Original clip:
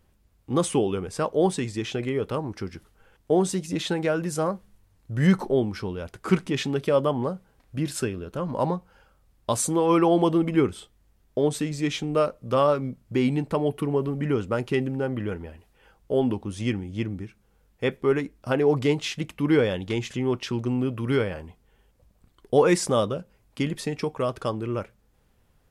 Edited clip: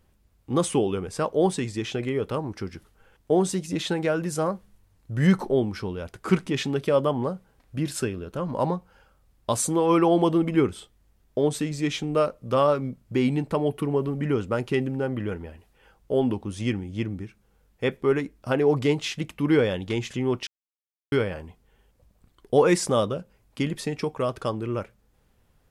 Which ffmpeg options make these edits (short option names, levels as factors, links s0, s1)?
-filter_complex "[0:a]asplit=3[s0][s1][s2];[s0]atrim=end=20.47,asetpts=PTS-STARTPTS,afade=t=out:st=20.466:d=0.004:c=hsin[s3];[s1]atrim=start=20.47:end=21.12,asetpts=PTS-STARTPTS,volume=0[s4];[s2]atrim=start=21.12,asetpts=PTS-STARTPTS,afade=t=in:d=0.004:c=hsin[s5];[s3][s4][s5]concat=n=3:v=0:a=1"